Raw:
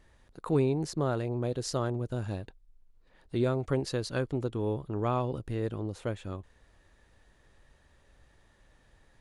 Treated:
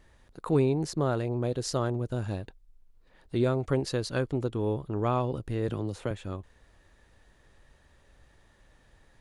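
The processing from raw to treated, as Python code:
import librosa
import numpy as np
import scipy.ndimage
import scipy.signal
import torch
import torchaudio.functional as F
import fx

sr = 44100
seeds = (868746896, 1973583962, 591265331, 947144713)

y = fx.band_squash(x, sr, depth_pct=70, at=(5.68, 6.11))
y = y * 10.0 ** (2.0 / 20.0)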